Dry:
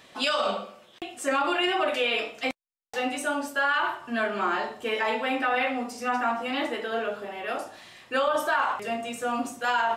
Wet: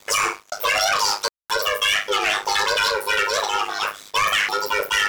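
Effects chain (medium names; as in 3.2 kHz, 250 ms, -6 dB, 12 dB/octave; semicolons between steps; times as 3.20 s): ring modulator 26 Hz; waveshaping leveller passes 3; wide varispeed 1.96×; trim +1 dB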